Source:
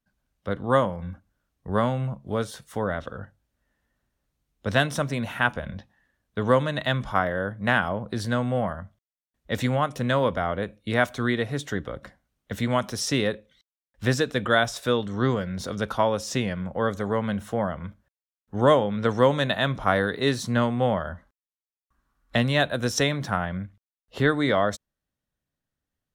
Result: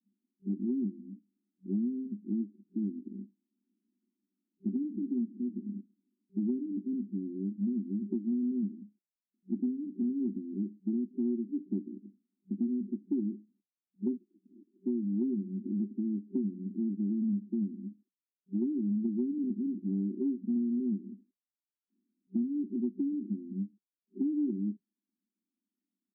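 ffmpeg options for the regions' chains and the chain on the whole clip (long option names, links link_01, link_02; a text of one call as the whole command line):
ffmpeg -i in.wav -filter_complex "[0:a]asettb=1/sr,asplit=3[link_01][link_02][link_03];[link_01]atrim=end=14.174[link_04];[link_02]atrim=start=14.17:end=14.73,asetpts=PTS-STARTPTS,afade=type=in:duration=0.004:curve=qsin,afade=type=out:start_time=0.556:duration=0.004:curve=qsin,acompressor=threshold=-30dB:ratio=2:attack=3.2:release=140:knee=1:detection=peak,volume=22dB,asoftclip=hard,volume=-22dB,lowpass=frequency=2700:width_type=q:width=0.5098,lowpass=frequency=2700:width_type=q:width=0.6013,lowpass=frequency=2700:width_type=q:width=0.9,lowpass=frequency=2700:width_type=q:width=2.563,afreqshift=-3200[link_05];[link_03]atrim=start=14.726[link_06];[link_04][link_05]acrossfade=duration=0.004:curve1=hsin:curve2=qsin[link_07];[link_07][link_06]acrossfade=duration=0.004:curve1=qsin:curve2=hsin,afftfilt=real='re*between(b*sr/4096,190,390)':imag='im*between(b*sr/4096,190,390)':win_size=4096:overlap=0.75,aecho=1:1:0.9:0.85,acompressor=threshold=-28dB:ratio=6" out.wav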